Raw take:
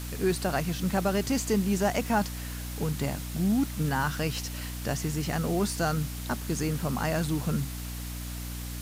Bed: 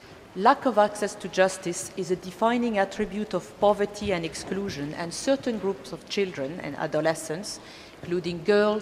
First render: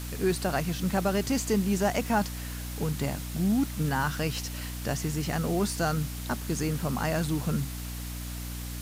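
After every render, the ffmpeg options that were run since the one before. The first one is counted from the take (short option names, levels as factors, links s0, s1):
-af anull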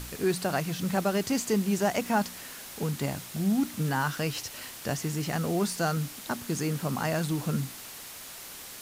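-af "bandreject=f=60:t=h:w=4,bandreject=f=120:t=h:w=4,bandreject=f=180:t=h:w=4,bandreject=f=240:t=h:w=4,bandreject=f=300:t=h:w=4"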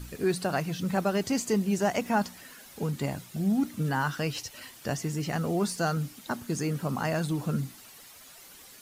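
-af "afftdn=nr=10:nf=-44"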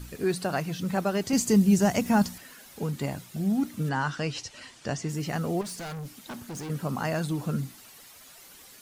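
-filter_complex "[0:a]asettb=1/sr,asplit=3[s0][s1][s2];[s0]atrim=end=1.334[s3];[s1]atrim=start=1.33:end=2.38,asetpts=PTS-STARTPTS,afade=t=in:d=0.004:c=qsin,afade=t=out:st=1.046:d=0.004:c=qsin,bass=f=250:g=11,treble=f=4000:g=6[s4];[s2]atrim=start=2.376[s5];[s3][s4]acrossfade=d=0.004:c1=hsin:c2=qsin[s6];[s6][s5]acrossfade=d=0.004:c1=qsin:c2=hsin,asettb=1/sr,asplit=3[s7][s8][s9];[s7]atrim=end=3.894[s10];[s8]atrim=start=3.89:end=5.09,asetpts=PTS-STARTPTS,afade=t=in:d=0.004:c=qsin,afade=t=out:st=1.196:d=0.004:c=qsin,lowpass=f=8200:w=0.5412,lowpass=f=8200:w=1.3066[s11];[s9]atrim=start=5.086[s12];[s10][s11]acrossfade=d=0.004:c1=hsin:c2=qsin[s13];[s13][s12]acrossfade=d=0.004:c1=qsin:c2=hsin,asettb=1/sr,asplit=3[s14][s15][s16];[s14]atrim=end=5.614[s17];[s15]atrim=start=5.61:end=6.7,asetpts=PTS-STARTPTS,afade=t=in:d=0.004:c=qsin,afade=t=out:st=1.086:d=0.004:c=qsin,volume=56.2,asoftclip=hard,volume=0.0178[s18];[s16]atrim=start=6.696[s19];[s17][s18]acrossfade=d=0.004:c1=hsin:c2=qsin[s20];[s20][s19]acrossfade=d=0.004:c1=qsin:c2=hsin"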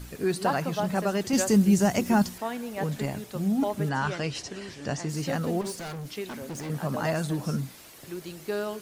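-filter_complex "[1:a]volume=0.316[s0];[0:a][s0]amix=inputs=2:normalize=0"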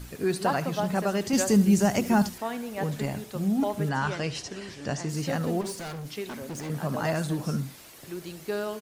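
-af "aecho=1:1:74:0.158"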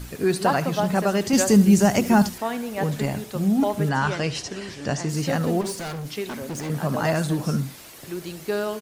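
-af "volume=1.78"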